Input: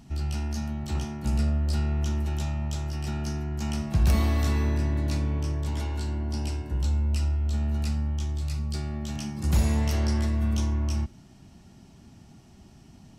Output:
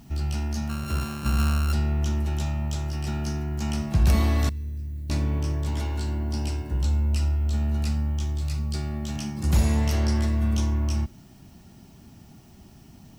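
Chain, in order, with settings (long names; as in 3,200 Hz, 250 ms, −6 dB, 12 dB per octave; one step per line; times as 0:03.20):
0:00.69–0:01.73: samples sorted by size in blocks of 32 samples
0:04.49–0:05.10: guitar amp tone stack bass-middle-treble 10-0-1
background noise violet −67 dBFS
level +2 dB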